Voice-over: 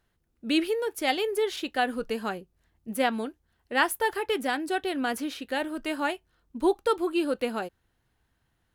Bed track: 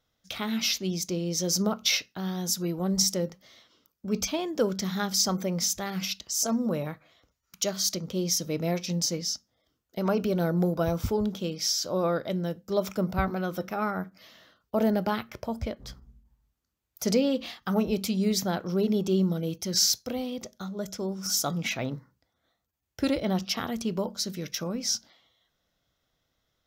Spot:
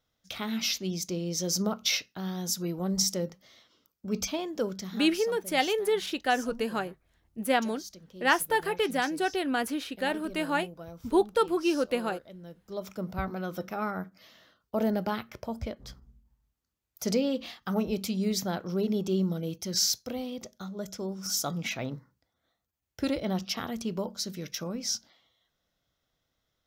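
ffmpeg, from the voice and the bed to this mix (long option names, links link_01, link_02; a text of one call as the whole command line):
ffmpeg -i stem1.wav -i stem2.wav -filter_complex "[0:a]adelay=4500,volume=0dB[link_01];[1:a]volume=12dB,afade=type=out:start_time=4.38:duration=0.82:silence=0.177828,afade=type=in:start_time=12.37:duration=1.26:silence=0.188365[link_02];[link_01][link_02]amix=inputs=2:normalize=0" out.wav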